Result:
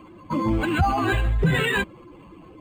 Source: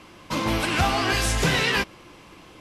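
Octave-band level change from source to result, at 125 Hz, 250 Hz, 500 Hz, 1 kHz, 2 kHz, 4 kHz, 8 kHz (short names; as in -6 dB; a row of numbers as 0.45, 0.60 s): +4.0, +3.5, +0.5, +0.5, -1.0, -7.5, -13.0 dB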